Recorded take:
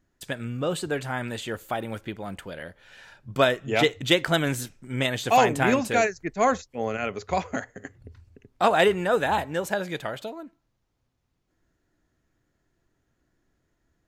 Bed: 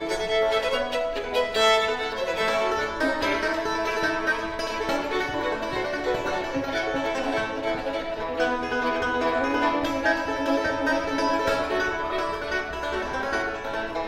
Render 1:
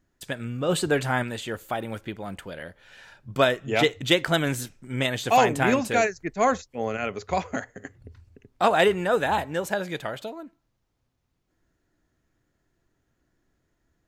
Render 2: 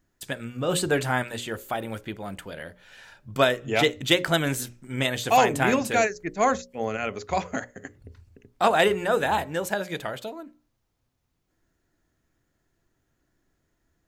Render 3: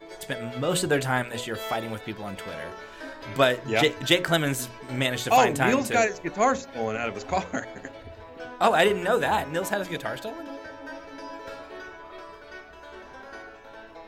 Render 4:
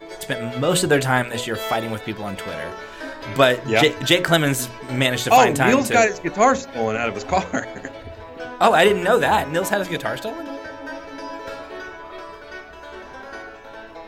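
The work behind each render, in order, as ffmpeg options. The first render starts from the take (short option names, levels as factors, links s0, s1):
-filter_complex "[0:a]asplit=3[s0][s1][s2];[s0]afade=t=out:st=0.68:d=0.02[s3];[s1]acontrast=33,afade=t=in:st=0.68:d=0.02,afade=t=out:st=1.22:d=0.02[s4];[s2]afade=t=in:st=1.22:d=0.02[s5];[s3][s4][s5]amix=inputs=3:normalize=0"
-af "highshelf=f=7800:g=5,bandreject=f=60:t=h:w=6,bandreject=f=120:t=h:w=6,bandreject=f=180:t=h:w=6,bandreject=f=240:t=h:w=6,bandreject=f=300:t=h:w=6,bandreject=f=360:t=h:w=6,bandreject=f=420:t=h:w=6,bandreject=f=480:t=h:w=6,bandreject=f=540:t=h:w=6,bandreject=f=600:t=h:w=6"
-filter_complex "[1:a]volume=0.168[s0];[0:a][s0]amix=inputs=2:normalize=0"
-af "volume=2.11,alimiter=limit=0.708:level=0:latency=1"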